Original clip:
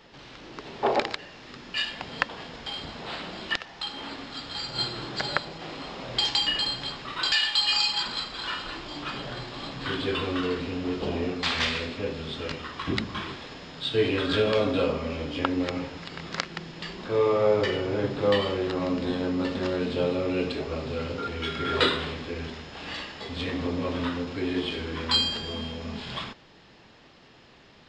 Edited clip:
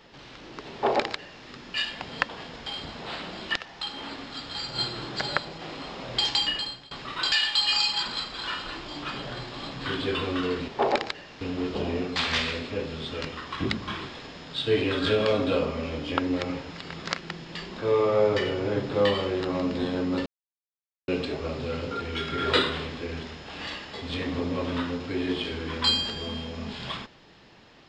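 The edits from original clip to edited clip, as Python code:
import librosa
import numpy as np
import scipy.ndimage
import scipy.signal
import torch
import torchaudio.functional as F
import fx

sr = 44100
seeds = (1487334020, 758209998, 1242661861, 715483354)

y = fx.edit(x, sr, fx.duplicate(start_s=0.72, length_s=0.73, to_s=10.68),
    fx.fade_out_to(start_s=6.42, length_s=0.49, floor_db=-23.5),
    fx.silence(start_s=19.53, length_s=0.82), tone=tone)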